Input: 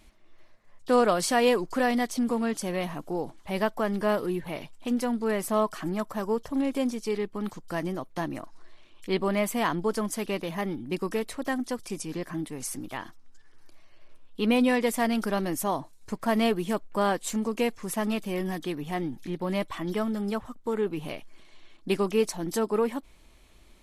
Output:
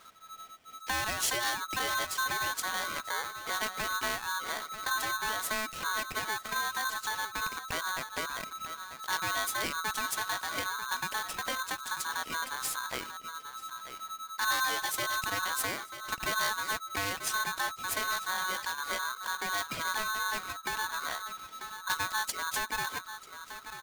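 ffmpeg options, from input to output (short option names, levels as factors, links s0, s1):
-filter_complex "[0:a]equalizer=f=1200:w=0.59:g=5.5,acrossover=split=180|3000[s0][s1][s2];[s1]acompressor=threshold=0.0178:ratio=5[s3];[s0][s3][s2]amix=inputs=3:normalize=0,asplit=2[s4][s5];[s5]adelay=941,lowpass=f=2500:p=1,volume=0.282,asplit=2[s6][s7];[s7]adelay=941,lowpass=f=2500:p=1,volume=0.17[s8];[s6][s8]amix=inputs=2:normalize=0[s9];[s4][s9]amix=inputs=2:normalize=0,aeval=exprs='val(0)*sgn(sin(2*PI*1300*n/s))':c=same"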